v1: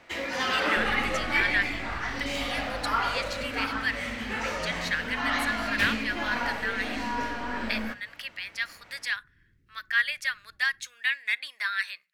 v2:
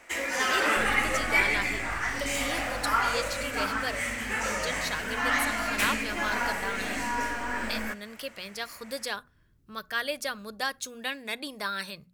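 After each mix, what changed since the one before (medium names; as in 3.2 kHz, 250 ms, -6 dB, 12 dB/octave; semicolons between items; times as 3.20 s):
speech: remove resonant high-pass 1.9 kHz, resonance Q 3.8; first sound: add graphic EQ 125/2000/4000/8000 Hz -12/+4/-8/+9 dB; master: add treble shelf 7.6 kHz +11 dB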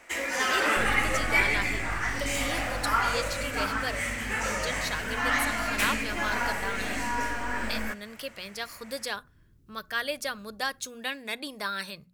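second sound +5.0 dB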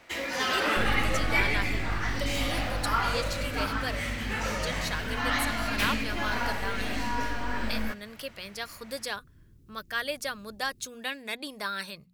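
first sound: add graphic EQ 125/2000/4000/8000 Hz +12/-4/+8/-9 dB; second sound +4.0 dB; reverb: off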